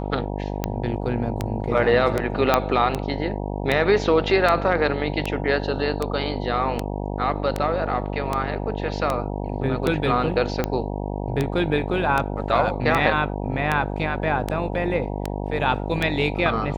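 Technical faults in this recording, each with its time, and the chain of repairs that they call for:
buzz 50 Hz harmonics 19 -28 dBFS
tick 78 rpm -9 dBFS
2.54 s: pop -3 dBFS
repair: de-click; de-hum 50 Hz, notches 19

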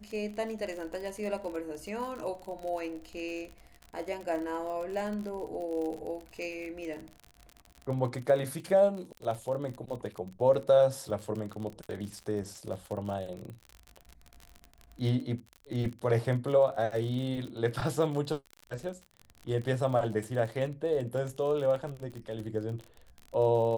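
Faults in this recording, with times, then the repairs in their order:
crackle 44 per s -36 dBFS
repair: de-click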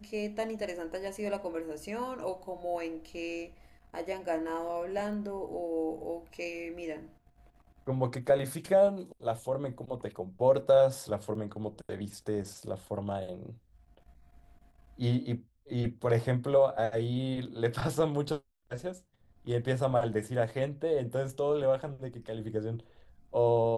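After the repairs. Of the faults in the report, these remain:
nothing left

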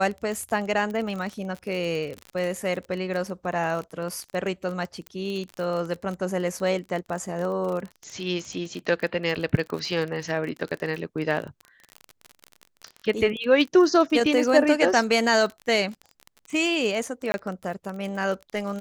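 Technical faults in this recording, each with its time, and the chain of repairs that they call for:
crackle 35 per s -30 dBFS
5.07 s: pop -22 dBFS
17.32–17.34 s: dropout 21 ms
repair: de-click; interpolate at 17.32 s, 21 ms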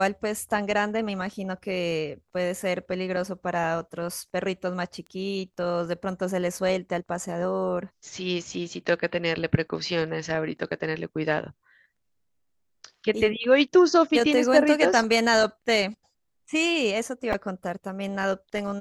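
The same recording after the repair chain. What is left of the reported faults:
5.07 s: pop

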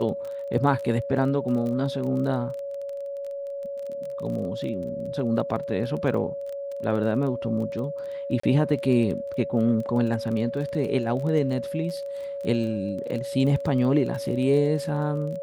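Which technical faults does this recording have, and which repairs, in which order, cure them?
crackle 21 per s -32 dBFS
whine 560 Hz -30 dBFS
8.40–8.43 s: dropout 34 ms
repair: de-click; band-stop 560 Hz, Q 30; interpolate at 8.40 s, 34 ms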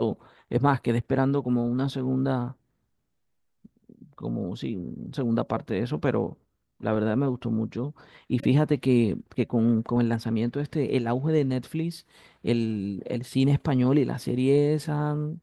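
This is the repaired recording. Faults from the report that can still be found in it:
nothing left

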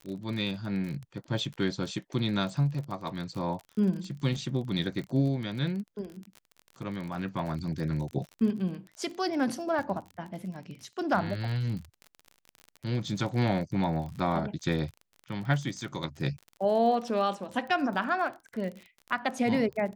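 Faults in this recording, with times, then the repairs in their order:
crackle 37 per s -36 dBFS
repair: de-click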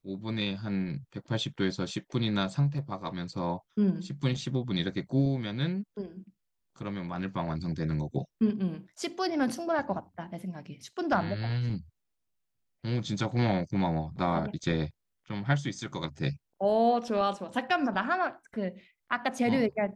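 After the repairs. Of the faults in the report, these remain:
nothing left

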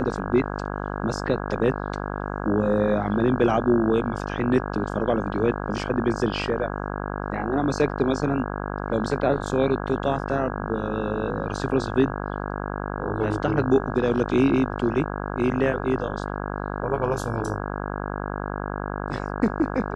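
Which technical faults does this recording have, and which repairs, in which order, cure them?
buzz 50 Hz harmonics 33 -30 dBFS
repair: de-hum 50 Hz, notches 33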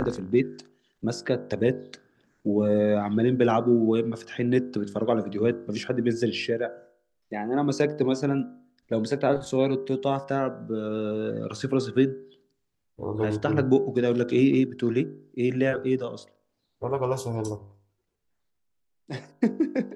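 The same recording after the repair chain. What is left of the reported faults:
nothing left

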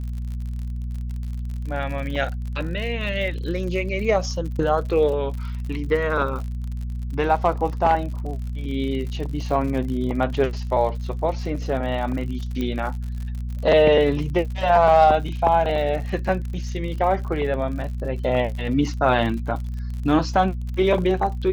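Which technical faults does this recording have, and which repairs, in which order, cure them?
crackle 59 per s -31 dBFS
hum 60 Hz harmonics 4 -28 dBFS
12.61 s: pop -15 dBFS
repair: de-click; de-hum 60 Hz, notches 4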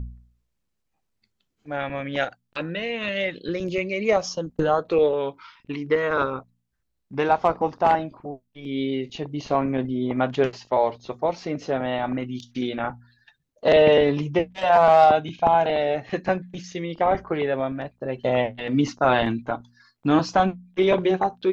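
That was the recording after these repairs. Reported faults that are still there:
12.61 s: pop

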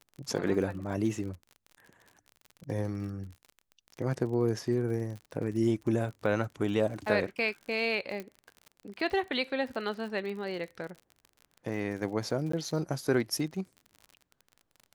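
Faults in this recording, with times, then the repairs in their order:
crackle 48 per s -39 dBFS
8.20 s: pop -24 dBFS
12.52–12.53 s: dropout 14 ms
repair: de-click; interpolate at 12.52 s, 14 ms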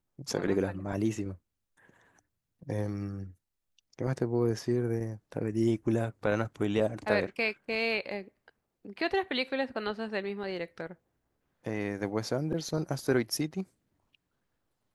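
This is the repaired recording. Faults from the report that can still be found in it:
nothing left

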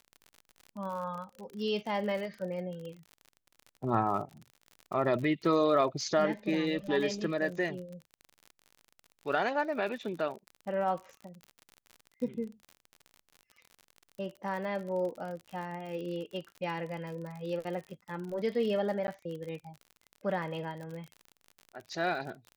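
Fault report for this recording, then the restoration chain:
crackle 47 per s -39 dBFS
19.07–19.08 s: dropout 10 ms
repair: de-click; interpolate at 19.07 s, 10 ms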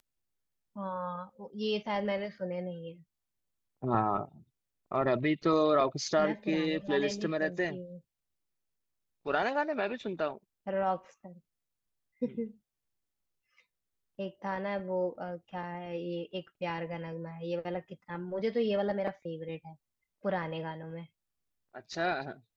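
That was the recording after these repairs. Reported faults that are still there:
nothing left

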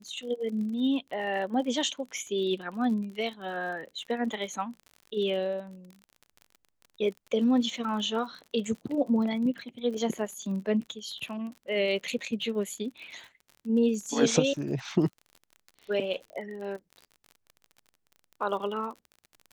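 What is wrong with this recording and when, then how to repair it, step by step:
crackle 44 per s -38 dBFS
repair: de-click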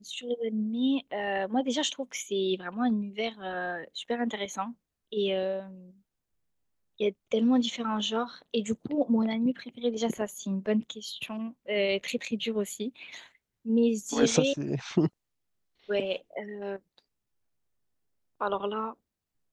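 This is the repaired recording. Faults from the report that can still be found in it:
nothing left

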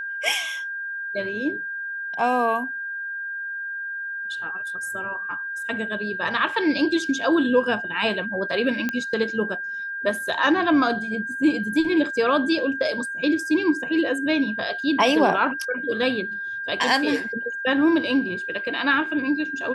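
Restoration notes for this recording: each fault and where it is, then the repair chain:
whine 1.6 kHz -28 dBFS
8.89 s: pop -12 dBFS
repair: de-click; band-stop 1.6 kHz, Q 30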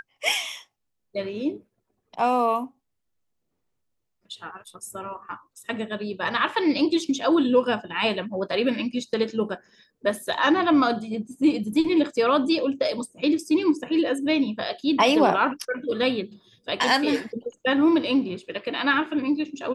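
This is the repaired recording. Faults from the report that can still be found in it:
nothing left

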